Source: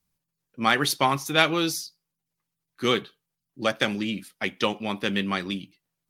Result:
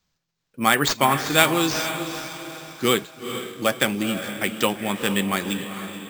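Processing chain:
feedback delay with all-pass diffusion 452 ms, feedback 44%, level −9 dB
decimation without filtering 4×
level +3 dB

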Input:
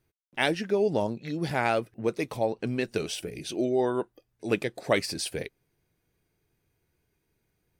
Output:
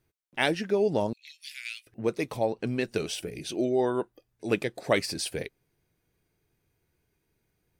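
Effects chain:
0:01.13–0:01.87: Butterworth high-pass 2,400 Hz 36 dB per octave

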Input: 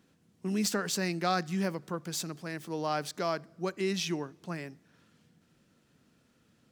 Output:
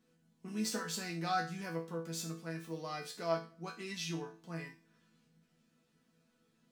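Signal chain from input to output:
resonators tuned to a chord E3 sus4, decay 0.36 s
level +10.5 dB

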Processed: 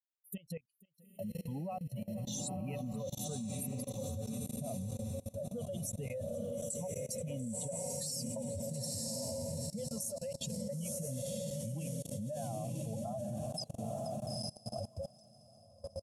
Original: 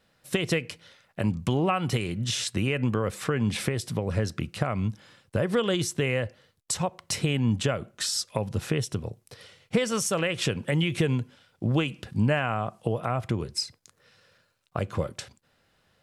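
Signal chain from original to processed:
spectral dynamics exaggerated over time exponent 3
drawn EQ curve 110 Hz 0 dB, 220 Hz +10 dB, 390 Hz −18 dB, 560 Hz +13 dB, 1,400 Hz −25 dB, 12,000 Hz +13 dB
downward compressor 3 to 1, threshold −32 dBFS, peak gain reduction 12.5 dB
repeating echo 479 ms, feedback 31%, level −23 dB
dynamic equaliser 7,600 Hz, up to +3 dB, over −48 dBFS, Q 1.4
feedback delay with all-pass diffusion 938 ms, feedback 55%, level −5.5 dB
output level in coarse steps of 22 dB
level +5 dB

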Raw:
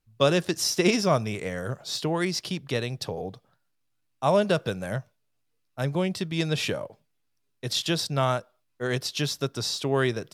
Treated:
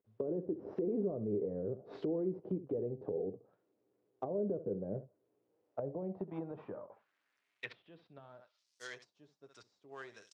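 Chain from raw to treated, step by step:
variable-slope delta modulation 64 kbit/s
band-pass filter sweep 420 Hz → 7,100 Hz, 0:05.42–0:09.08
brickwall limiter −31 dBFS, peak gain reduction 15 dB
on a send: ambience of single reflections 10 ms −9 dB, 67 ms −14 dB
on the sum: treble cut that deepens with the level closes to 380 Hz, closed at −40 dBFS
level +5.5 dB

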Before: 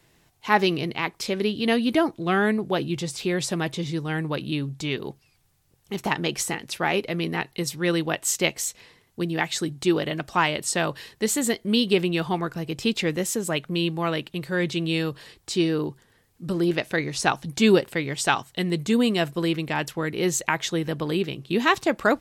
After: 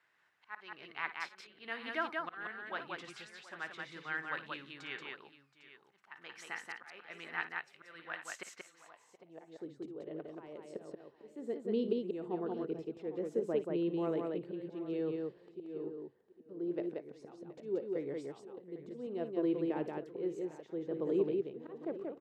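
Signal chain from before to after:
volume swells 578 ms
multi-tap delay 53/57/181/724/803 ms −19.5/−14/−3/−18.5/−15.5 dB
band-pass filter sweep 1,500 Hz → 420 Hz, 0:08.59–0:09.79
level −3.5 dB

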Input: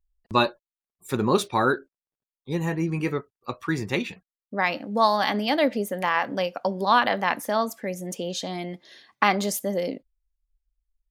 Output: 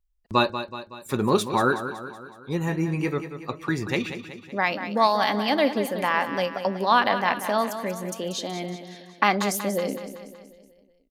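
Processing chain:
repeating echo 187 ms, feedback 54%, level −10.5 dB

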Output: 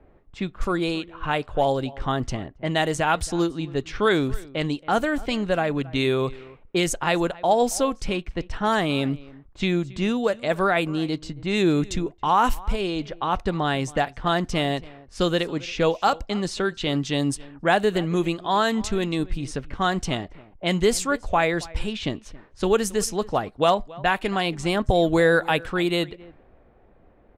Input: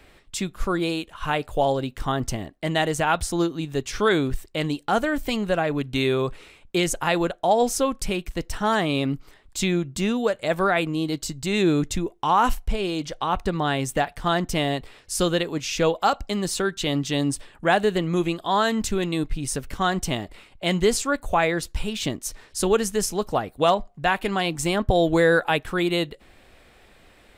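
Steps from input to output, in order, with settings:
slap from a distant wall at 47 metres, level −21 dB
low-pass that shuts in the quiet parts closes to 770 Hz, open at −18.5 dBFS

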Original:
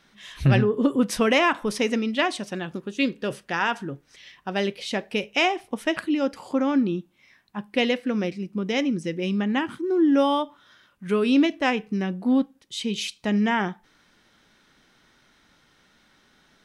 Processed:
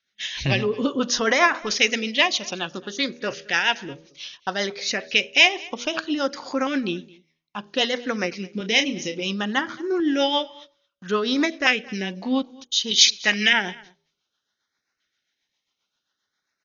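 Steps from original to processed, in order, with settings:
0:12.91–0:13.53: meter weighting curve D
noise gate −49 dBFS, range −27 dB
tilt shelving filter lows −10 dB, about 650 Hz
hum removal 80.46 Hz, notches 8
in parallel at −2.5 dB: downward compressor 20 to 1, threshold −30 dBFS, peak gain reduction 23.5 dB
on the sum: rotating-speaker cabinet horn 7.5 Hz
auto-filter notch saw up 0.6 Hz 910–3,500 Hz
0:08.57–0:09.27: double-tracking delay 32 ms −8.5 dB
single-tap delay 218 ms −23.5 dB
level +2.5 dB
AC-3 48 kbit/s 48,000 Hz

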